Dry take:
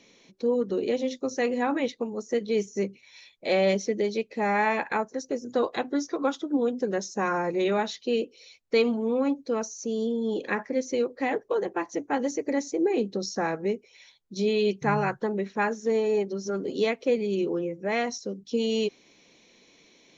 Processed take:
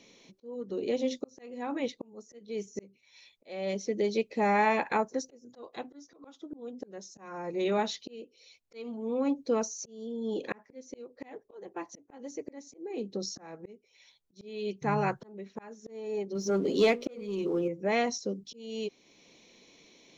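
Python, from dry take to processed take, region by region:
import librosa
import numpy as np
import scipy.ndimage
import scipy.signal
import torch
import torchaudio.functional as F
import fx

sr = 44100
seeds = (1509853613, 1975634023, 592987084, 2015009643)

y = fx.chain(x, sr, fx.hum_notches(base_hz=60, count=9),
    fx.leveller(passes=1), at=(16.35, 17.68))
y = fx.peak_eq(y, sr, hz=1600.0, db=-4.5, octaves=0.64)
y = fx.auto_swell(y, sr, attack_ms=767.0)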